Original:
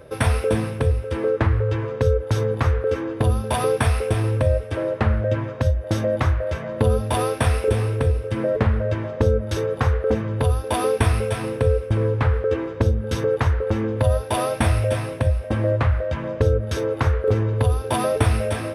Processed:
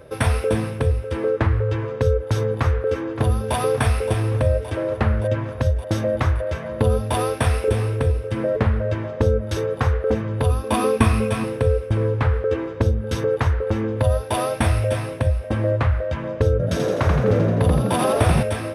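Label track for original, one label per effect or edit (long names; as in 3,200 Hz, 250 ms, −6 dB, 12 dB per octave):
2.580000	3.560000	delay throw 570 ms, feedback 75%, level −12.5 dB
10.460000	11.440000	hollow resonant body resonances 220/1,100/2,500 Hz, height 11 dB
16.510000	18.430000	echo with shifted repeats 84 ms, feedback 59%, per repeat +59 Hz, level −4 dB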